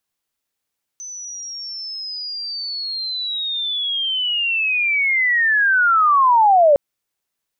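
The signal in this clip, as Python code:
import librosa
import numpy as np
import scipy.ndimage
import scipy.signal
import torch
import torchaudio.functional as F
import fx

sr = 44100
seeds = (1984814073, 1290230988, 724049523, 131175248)

y = fx.chirp(sr, length_s=5.76, from_hz=6100.0, to_hz=550.0, law='linear', from_db=-30.0, to_db=-8.5)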